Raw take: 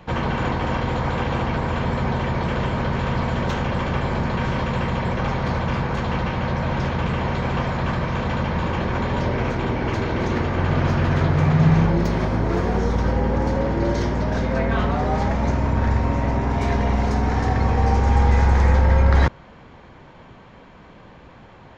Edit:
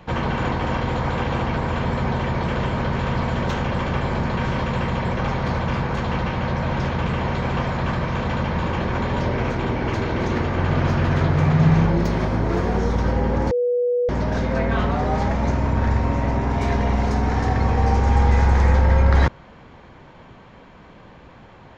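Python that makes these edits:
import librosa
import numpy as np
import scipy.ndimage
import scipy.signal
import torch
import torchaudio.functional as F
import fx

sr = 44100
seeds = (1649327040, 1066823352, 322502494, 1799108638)

y = fx.edit(x, sr, fx.bleep(start_s=13.51, length_s=0.58, hz=488.0, db=-17.0), tone=tone)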